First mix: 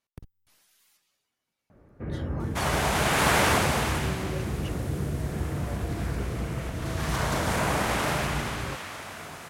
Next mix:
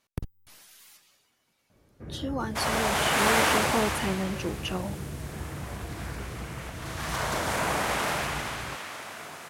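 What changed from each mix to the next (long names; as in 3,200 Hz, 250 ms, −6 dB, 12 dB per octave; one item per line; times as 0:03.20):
speech +11.5 dB
first sound −7.0 dB
second sound: add high-pass filter 280 Hz 6 dB per octave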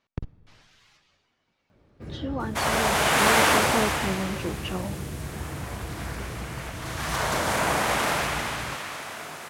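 speech: add high-frequency loss of the air 160 metres
first sound: remove low-pass filter 2,200 Hz 24 dB per octave
reverb: on, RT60 1.8 s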